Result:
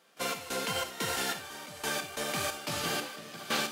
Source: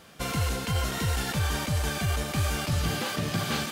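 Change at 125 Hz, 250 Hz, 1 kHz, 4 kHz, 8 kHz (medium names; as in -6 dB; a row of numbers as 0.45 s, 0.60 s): -19.0 dB, -9.0 dB, -2.5 dB, -1.5 dB, -2.0 dB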